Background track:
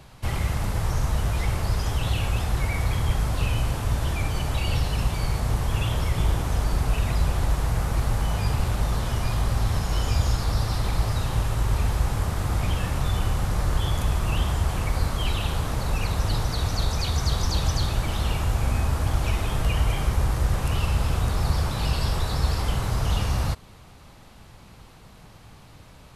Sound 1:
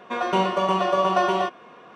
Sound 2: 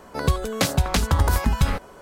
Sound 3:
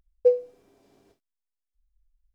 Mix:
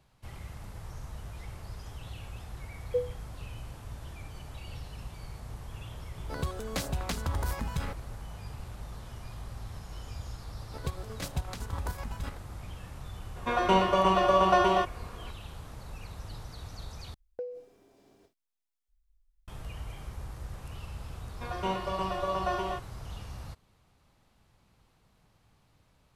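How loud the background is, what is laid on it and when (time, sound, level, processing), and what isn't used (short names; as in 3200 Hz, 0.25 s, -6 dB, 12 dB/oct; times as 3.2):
background track -18 dB
2.69 add 3 -10.5 dB
6.15 add 2 -14.5 dB + sample leveller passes 1
10.59 add 2 -13.5 dB + chopper 7.9 Hz, depth 60%, duty 45%
13.36 add 1 -2 dB
17.14 replace with 3 -0.5 dB + compressor 8:1, threshold -34 dBFS
21.3 add 1 -10.5 dB + three-band expander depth 40%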